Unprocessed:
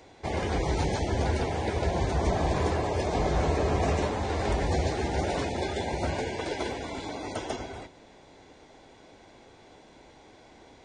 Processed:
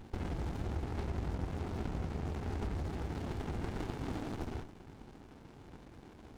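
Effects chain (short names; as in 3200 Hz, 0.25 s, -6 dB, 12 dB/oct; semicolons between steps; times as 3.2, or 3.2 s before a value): compressor 16:1, threshold -35 dBFS, peak gain reduction 14.5 dB; tempo 1.7×; running maximum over 65 samples; gain +4 dB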